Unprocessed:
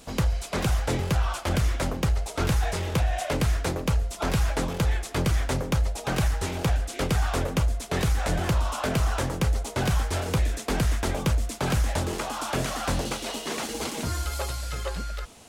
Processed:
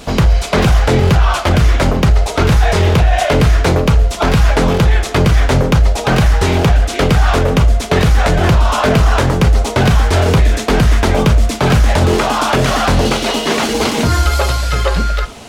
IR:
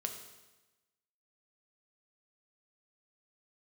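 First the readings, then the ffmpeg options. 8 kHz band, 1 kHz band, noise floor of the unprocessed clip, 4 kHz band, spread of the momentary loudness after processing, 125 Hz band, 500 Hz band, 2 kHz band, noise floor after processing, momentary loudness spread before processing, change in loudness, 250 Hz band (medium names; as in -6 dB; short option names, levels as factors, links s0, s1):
+9.5 dB, +15.0 dB, -39 dBFS, +14.0 dB, 3 LU, +14.5 dB, +16.0 dB, +14.5 dB, -23 dBFS, 5 LU, +14.5 dB, +14.5 dB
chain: -filter_complex "[0:a]asplit=2[s0][s1];[1:a]atrim=start_sample=2205,atrim=end_sample=3087,lowpass=5900[s2];[s1][s2]afir=irnorm=-1:irlink=0,volume=1.33[s3];[s0][s3]amix=inputs=2:normalize=0,alimiter=level_in=4.22:limit=0.891:release=50:level=0:latency=1,volume=0.794"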